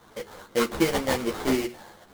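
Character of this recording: aliases and images of a low sample rate 2.6 kHz, jitter 20%; a shimmering, thickened sound

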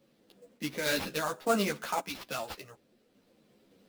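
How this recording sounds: a quantiser's noise floor 12-bit, dither none; random-step tremolo; aliases and images of a low sample rate 8.2 kHz, jitter 20%; a shimmering, thickened sound

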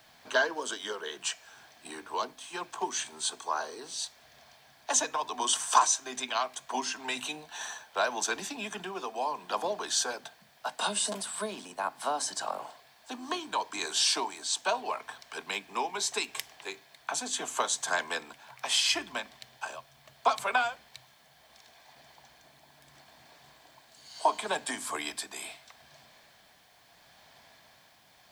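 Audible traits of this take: tremolo triangle 0.74 Hz, depth 45%; a quantiser's noise floor 12-bit, dither triangular

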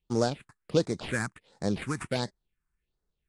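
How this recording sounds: aliases and images of a low sample rate 6 kHz, jitter 20%; phasing stages 4, 1.4 Hz, lowest notch 520–2800 Hz; AAC

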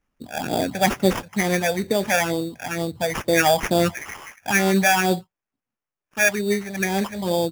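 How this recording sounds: phasing stages 8, 2.2 Hz, lowest notch 320–1700 Hz; aliases and images of a low sample rate 4.1 kHz, jitter 0%

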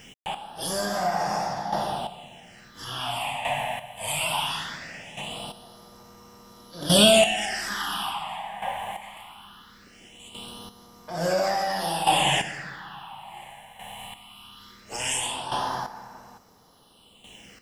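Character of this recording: a quantiser's noise floor 10-bit, dither none; phasing stages 6, 0.2 Hz, lowest notch 350–3000 Hz; chopped level 0.58 Hz, depth 65%, duty 20%

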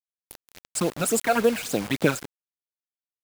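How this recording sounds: phasing stages 12, 3.6 Hz, lowest notch 310–2100 Hz; a quantiser's noise floor 6-bit, dither none

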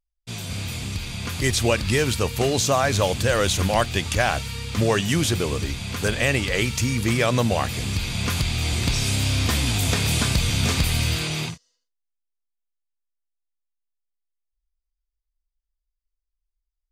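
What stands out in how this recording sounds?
noise floor -82 dBFS; spectral tilt -4.0 dB/octave

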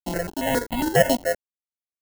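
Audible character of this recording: a quantiser's noise floor 6-bit, dither none; tremolo saw up 3.4 Hz, depth 65%; aliases and images of a low sample rate 1.2 kHz, jitter 0%; notches that jump at a steady rate 7.3 Hz 440–1600 Hz

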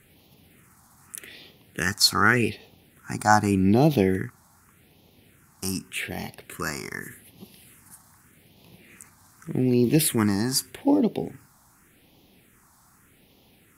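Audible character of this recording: phasing stages 4, 0.84 Hz, lowest notch 450–1500 Hz

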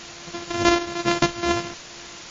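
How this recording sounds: a buzz of ramps at a fixed pitch in blocks of 128 samples; chopped level 2.1 Hz, depth 65%, duty 65%; a quantiser's noise floor 6-bit, dither triangular; MP3

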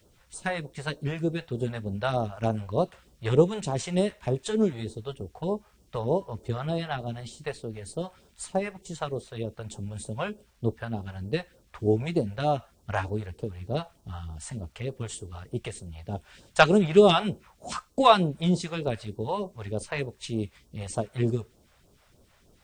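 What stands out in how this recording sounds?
a quantiser's noise floor 12-bit, dither none; phasing stages 2, 3.3 Hz, lowest notch 250–2000 Hz

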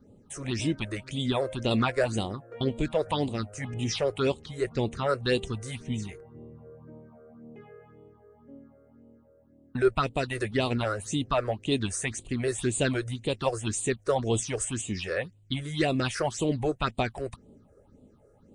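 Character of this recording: phasing stages 6, 1.9 Hz, lowest notch 220–1600 Hz

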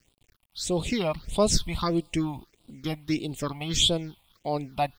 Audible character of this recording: a quantiser's noise floor 10-bit, dither none; phasing stages 6, 1.6 Hz, lowest notch 400–1800 Hz

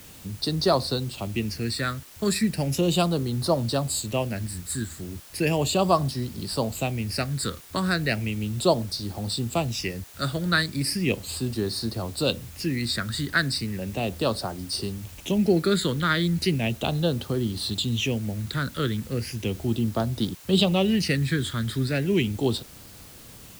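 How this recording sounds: phasing stages 8, 0.36 Hz, lowest notch 770–2400 Hz; a quantiser's noise floor 8-bit, dither triangular

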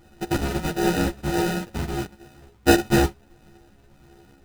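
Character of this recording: a buzz of ramps at a fixed pitch in blocks of 128 samples; phasing stages 8, 1.5 Hz, lowest notch 440–1200 Hz; aliases and images of a low sample rate 1.1 kHz, jitter 0%; a shimmering, thickened sound

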